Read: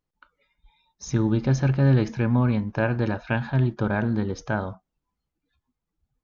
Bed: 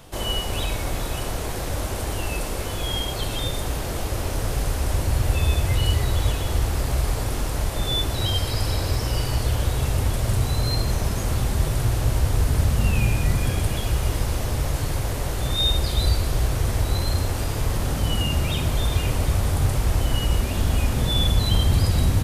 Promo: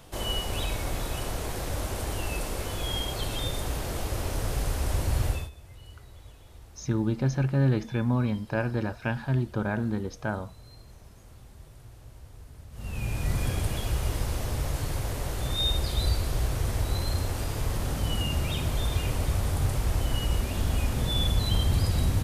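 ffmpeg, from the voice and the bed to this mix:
-filter_complex "[0:a]adelay=5750,volume=0.596[s0];[1:a]volume=7.08,afade=t=out:st=5.25:d=0.25:silence=0.0749894,afade=t=in:st=12.71:d=0.69:silence=0.0841395[s1];[s0][s1]amix=inputs=2:normalize=0"

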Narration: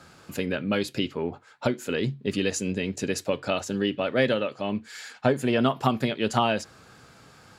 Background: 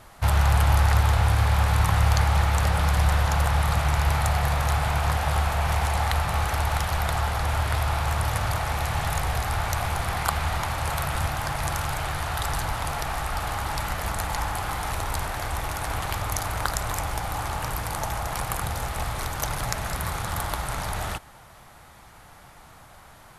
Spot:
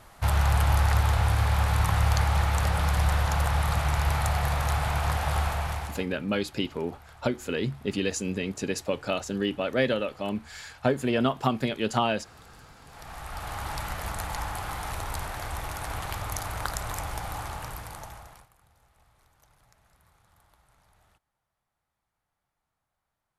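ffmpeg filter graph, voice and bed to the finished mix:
-filter_complex "[0:a]adelay=5600,volume=0.794[s0];[1:a]volume=8.41,afade=t=out:st=5.46:d=0.61:silence=0.0668344,afade=t=in:st=12.85:d=0.81:silence=0.0841395,afade=t=out:st=17.3:d=1.19:silence=0.0334965[s1];[s0][s1]amix=inputs=2:normalize=0"

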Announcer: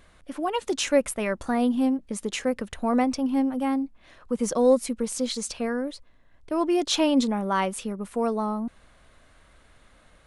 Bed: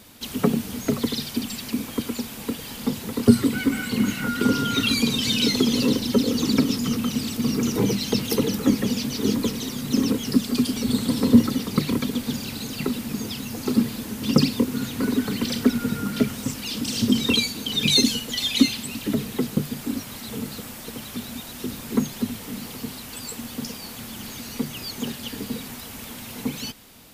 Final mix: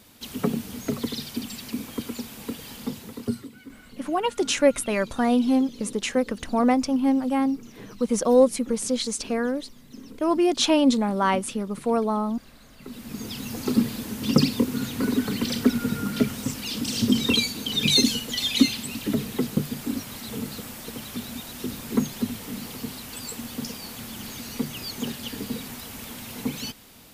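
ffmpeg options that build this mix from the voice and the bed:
-filter_complex "[0:a]adelay=3700,volume=1.33[s0];[1:a]volume=6.68,afade=t=out:st=2.73:d=0.77:silence=0.133352,afade=t=in:st=12.79:d=0.71:silence=0.0891251[s1];[s0][s1]amix=inputs=2:normalize=0"

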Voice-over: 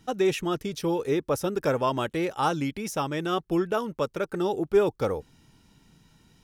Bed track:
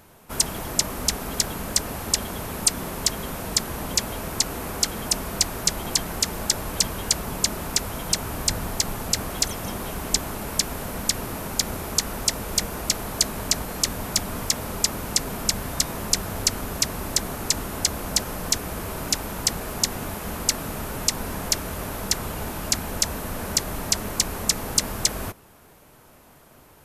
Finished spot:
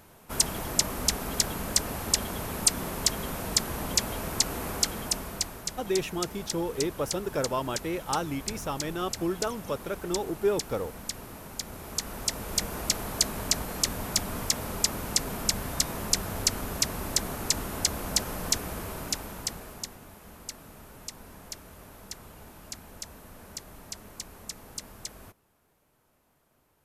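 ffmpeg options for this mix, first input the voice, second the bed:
-filter_complex "[0:a]adelay=5700,volume=0.596[s0];[1:a]volume=2,afade=t=out:st=4.72:d=0.92:silence=0.334965,afade=t=in:st=11.68:d=1.12:silence=0.375837,afade=t=out:st=18.53:d=1.46:silence=0.199526[s1];[s0][s1]amix=inputs=2:normalize=0"

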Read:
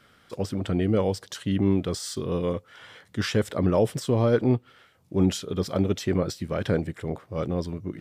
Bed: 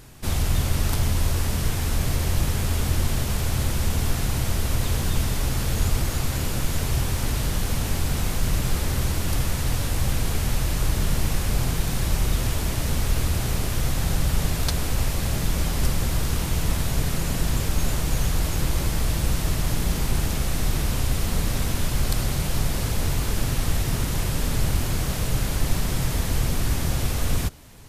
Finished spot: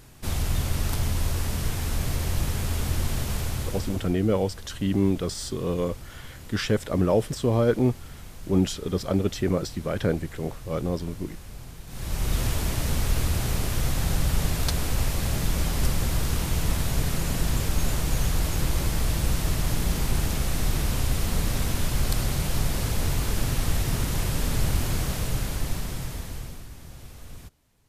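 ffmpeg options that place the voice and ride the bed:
-filter_complex "[0:a]adelay=3350,volume=1[s0];[1:a]volume=4.47,afade=t=out:st=3.37:d=0.78:silence=0.188365,afade=t=in:st=11.87:d=0.52:silence=0.149624,afade=t=out:st=24.95:d=1.73:silence=0.125893[s1];[s0][s1]amix=inputs=2:normalize=0"

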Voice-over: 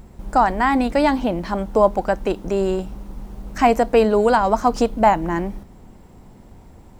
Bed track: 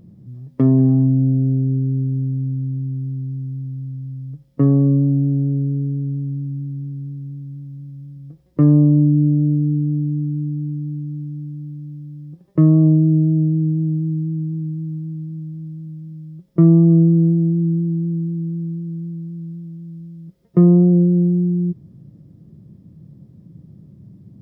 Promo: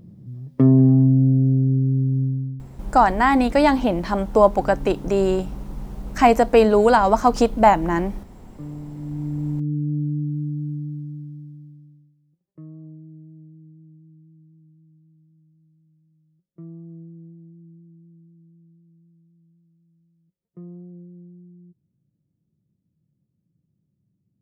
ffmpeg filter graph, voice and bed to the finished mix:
-filter_complex "[0:a]adelay=2600,volume=1.12[s0];[1:a]volume=9.44,afade=t=out:st=2.23:d=0.45:silence=0.0707946,afade=t=in:st=8.95:d=1.08:silence=0.105925,afade=t=out:st=10.74:d=1.41:silence=0.0562341[s1];[s0][s1]amix=inputs=2:normalize=0"

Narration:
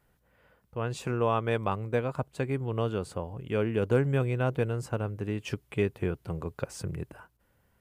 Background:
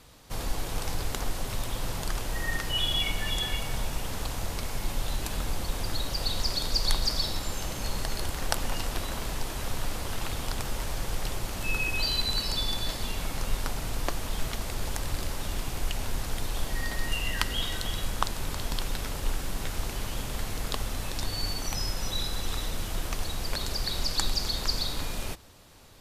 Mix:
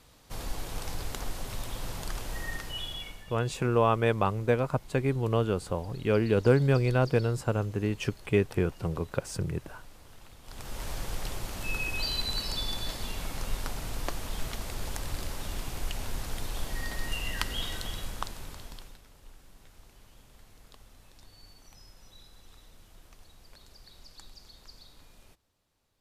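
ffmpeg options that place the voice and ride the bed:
-filter_complex "[0:a]adelay=2550,volume=1.41[s0];[1:a]volume=3.98,afade=t=out:st=2.35:d=0.92:silence=0.16788,afade=t=in:st=10.43:d=0.46:silence=0.149624,afade=t=out:st=17.7:d=1.31:silence=0.105925[s1];[s0][s1]amix=inputs=2:normalize=0"

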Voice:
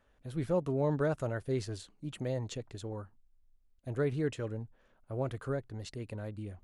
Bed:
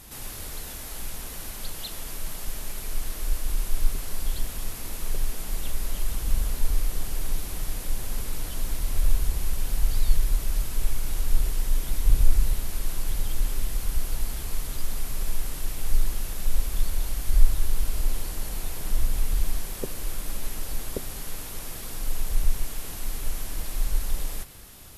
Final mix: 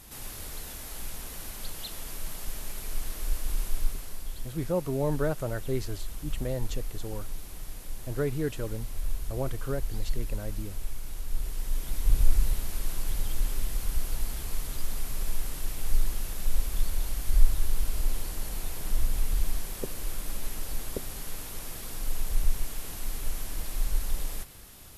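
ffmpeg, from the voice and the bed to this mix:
-filter_complex "[0:a]adelay=4200,volume=1.26[s0];[1:a]volume=1.58,afade=t=out:st=3.64:d=0.6:silence=0.473151,afade=t=in:st=11.28:d=1.02:silence=0.446684[s1];[s0][s1]amix=inputs=2:normalize=0"

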